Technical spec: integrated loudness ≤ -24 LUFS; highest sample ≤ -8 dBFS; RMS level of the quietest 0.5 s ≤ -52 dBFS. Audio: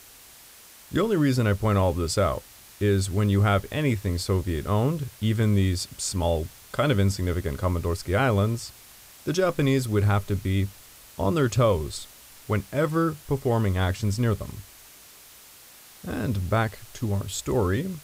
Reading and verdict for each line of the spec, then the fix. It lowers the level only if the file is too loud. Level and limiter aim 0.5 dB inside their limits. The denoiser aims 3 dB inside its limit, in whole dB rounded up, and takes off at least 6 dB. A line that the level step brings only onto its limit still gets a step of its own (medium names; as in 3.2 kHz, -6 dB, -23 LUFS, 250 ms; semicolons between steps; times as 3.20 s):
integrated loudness -25.5 LUFS: pass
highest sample -9.5 dBFS: pass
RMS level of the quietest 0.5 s -49 dBFS: fail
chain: noise reduction 6 dB, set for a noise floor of -49 dBFS